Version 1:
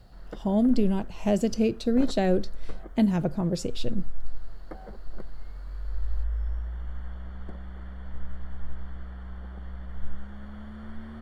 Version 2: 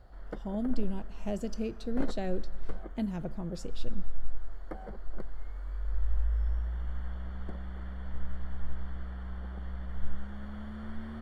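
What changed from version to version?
speech -12.0 dB; reverb: on, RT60 1.5 s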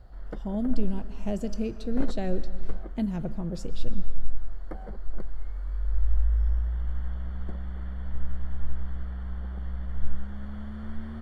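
speech: send +9.0 dB; master: add bass shelf 190 Hz +6 dB

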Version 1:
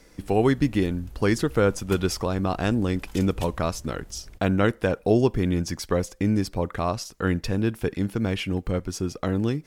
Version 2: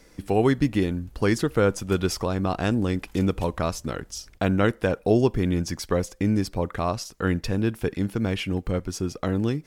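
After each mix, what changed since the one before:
background -7.5 dB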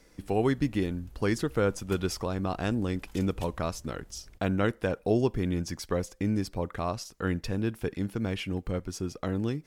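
speech -5.5 dB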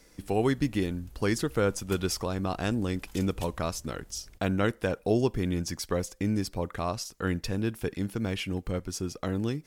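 master: add treble shelf 3.9 kHz +6 dB

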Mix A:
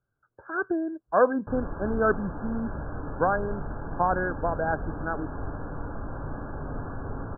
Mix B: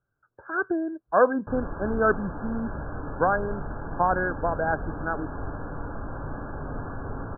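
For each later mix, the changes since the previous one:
master: remove distance through air 370 m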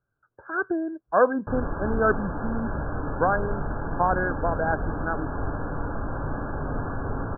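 background +4.5 dB

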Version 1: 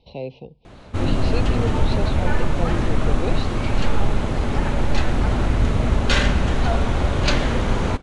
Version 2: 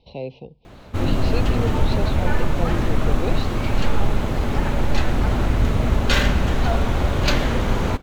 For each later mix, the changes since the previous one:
master: remove brick-wall FIR low-pass 11 kHz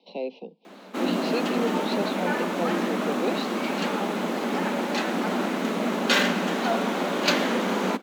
master: add steep high-pass 180 Hz 96 dB/octave

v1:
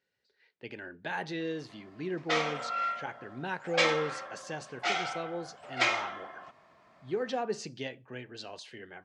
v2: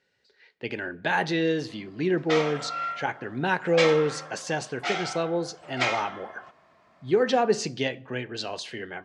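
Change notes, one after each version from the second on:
speech +10.0 dB; reverb: on, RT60 0.85 s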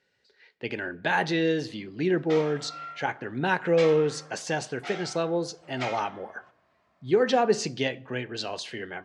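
background -9.0 dB

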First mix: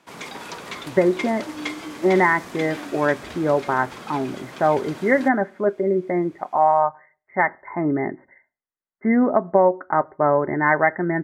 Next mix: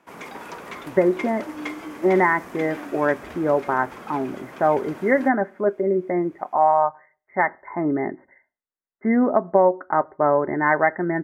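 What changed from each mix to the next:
master: add graphic EQ 125/4000/8000 Hz -5/-10/-6 dB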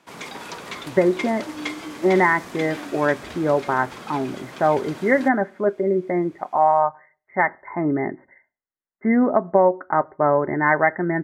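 master: add graphic EQ 125/4000/8000 Hz +5/+10/+6 dB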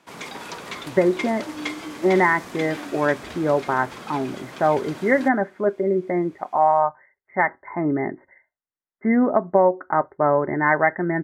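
reverb: off

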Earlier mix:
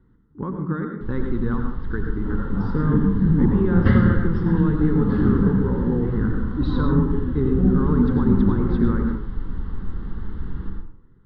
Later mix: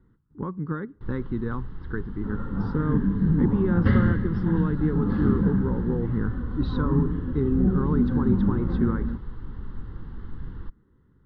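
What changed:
second sound -3.5 dB; reverb: off

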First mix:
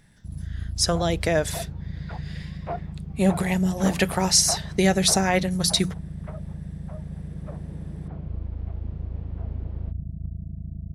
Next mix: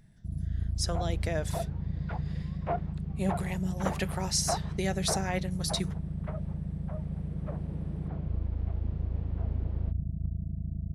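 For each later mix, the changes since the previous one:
speech -11.0 dB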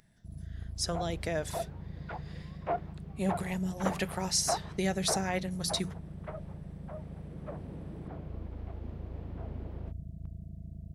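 first sound: add tilt shelf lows -10 dB, about 640 Hz

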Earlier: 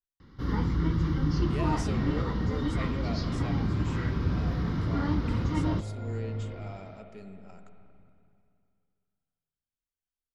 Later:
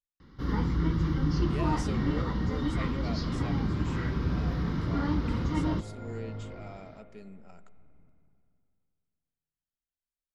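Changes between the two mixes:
speech: send -10.0 dB; master: add peaking EQ 100 Hz -9 dB 0.21 oct

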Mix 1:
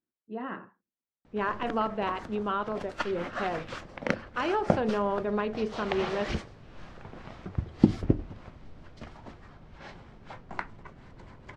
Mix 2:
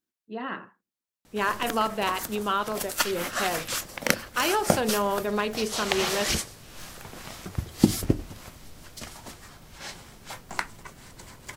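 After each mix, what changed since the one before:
master: remove tape spacing loss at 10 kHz 36 dB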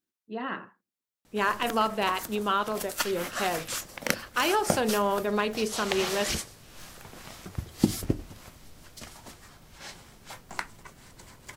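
background -4.0 dB

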